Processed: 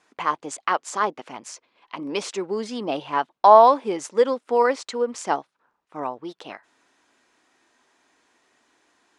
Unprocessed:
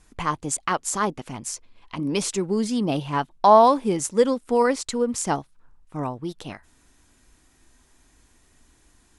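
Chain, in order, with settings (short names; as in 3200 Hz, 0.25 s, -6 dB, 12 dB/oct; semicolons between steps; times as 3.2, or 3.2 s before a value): BPF 440–6500 Hz; high shelf 3900 Hz -8.5 dB; gain +3 dB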